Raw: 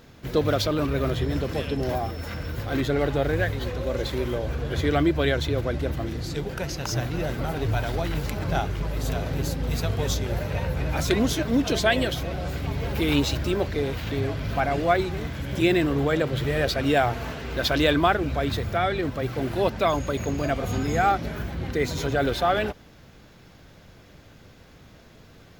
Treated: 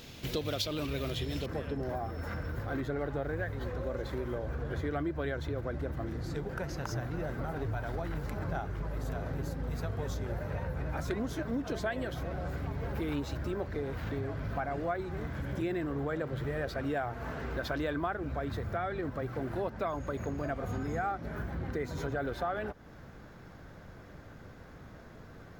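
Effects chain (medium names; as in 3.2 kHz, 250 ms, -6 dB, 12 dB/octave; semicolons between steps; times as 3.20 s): resonant high shelf 2.1 kHz +6.5 dB, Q 1.5, from 1.46 s -7.5 dB; compression 3:1, threshold -35 dBFS, peak gain reduction 15 dB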